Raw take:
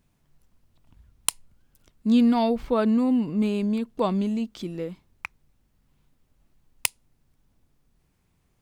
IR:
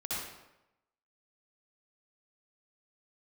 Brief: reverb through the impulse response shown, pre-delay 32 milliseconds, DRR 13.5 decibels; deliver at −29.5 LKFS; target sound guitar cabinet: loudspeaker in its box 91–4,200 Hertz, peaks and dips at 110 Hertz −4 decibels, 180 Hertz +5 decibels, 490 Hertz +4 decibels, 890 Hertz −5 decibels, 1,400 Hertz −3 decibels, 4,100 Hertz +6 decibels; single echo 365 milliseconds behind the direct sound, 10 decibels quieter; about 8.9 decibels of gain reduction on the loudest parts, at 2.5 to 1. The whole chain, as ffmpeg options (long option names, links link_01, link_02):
-filter_complex "[0:a]acompressor=threshold=-29dB:ratio=2.5,aecho=1:1:365:0.316,asplit=2[link_01][link_02];[1:a]atrim=start_sample=2205,adelay=32[link_03];[link_02][link_03]afir=irnorm=-1:irlink=0,volume=-17.5dB[link_04];[link_01][link_04]amix=inputs=2:normalize=0,highpass=91,equalizer=frequency=110:width_type=q:width=4:gain=-4,equalizer=frequency=180:width_type=q:width=4:gain=5,equalizer=frequency=490:width_type=q:width=4:gain=4,equalizer=frequency=890:width_type=q:width=4:gain=-5,equalizer=frequency=1400:width_type=q:width=4:gain=-3,equalizer=frequency=4100:width_type=q:width=4:gain=6,lowpass=frequency=4200:width=0.5412,lowpass=frequency=4200:width=1.3066,volume=0.5dB"